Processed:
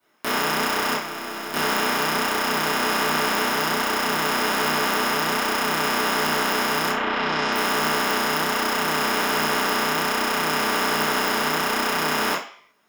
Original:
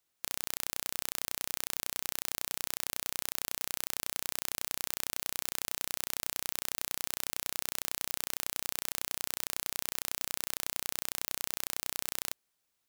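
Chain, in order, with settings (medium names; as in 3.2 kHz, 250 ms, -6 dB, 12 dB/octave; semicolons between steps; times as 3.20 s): 0.95–1.54 s: feedback comb 340 Hz, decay 0.7 s, mix 70%; 6.88–7.52 s: low-pass 2.7 kHz -> 7.2 kHz 24 dB/octave; reverberation RT60 0.50 s, pre-delay 3 ms, DRR -12 dB; detune thickener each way 22 cents; trim +6 dB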